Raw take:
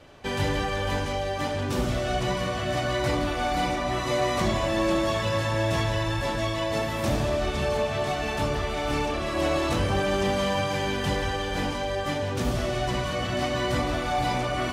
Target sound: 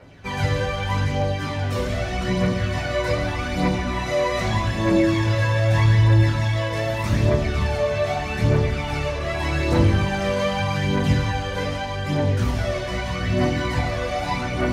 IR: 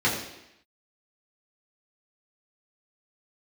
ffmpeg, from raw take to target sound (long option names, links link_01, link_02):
-filter_complex "[0:a]aphaser=in_gain=1:out_gain=1:delay=2:decay=0.6:speed=0.82:type=triangular,asplit=2[link_01][link_02];[link_02]equalizer=frequency=3600:width=0.34:gain=9[link_03];[1:a]atrim=start_sample=2205,lowshelf=frequency=170:gain=9[link_04];[link_03][link_04]afir=irnorm=-1:irlink=0,volume=-17.5dB[link_05];[link_01][link_05]amix=inputs=2:normalize=0,volume=-4dB"